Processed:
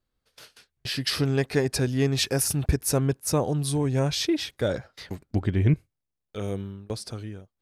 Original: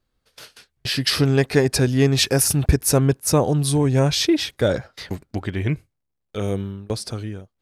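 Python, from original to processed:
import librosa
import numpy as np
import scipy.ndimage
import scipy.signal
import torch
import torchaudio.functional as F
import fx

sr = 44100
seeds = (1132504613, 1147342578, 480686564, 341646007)

y = fx.low_shelf(x, sr, hz=440.0, db=10.0, at=(5.3, 5.74))
y = y * librosa.db_to_amplitude(-6.5)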